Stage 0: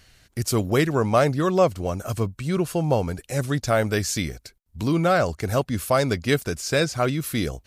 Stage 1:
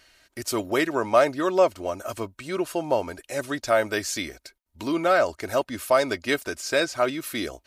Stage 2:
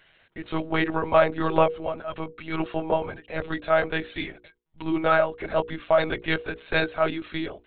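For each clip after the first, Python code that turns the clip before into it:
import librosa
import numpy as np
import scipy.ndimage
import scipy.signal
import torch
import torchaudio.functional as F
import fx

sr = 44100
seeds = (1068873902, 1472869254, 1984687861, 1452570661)

y1 = fx.bass_treble(x, sr, bass_db=-15, treble_db=-4)
y1 = y1 + 0.43 * np.pad(y1, (int(3.2 * sr / 1000.0), 0))[:len(y1)]
y2 = fx.lpc_monotone(y1, sr, seeds[0], pitch_hz=160.0, order=16)
y2 = fx.hum_notches(y2, sr, base_hz=60, count=8)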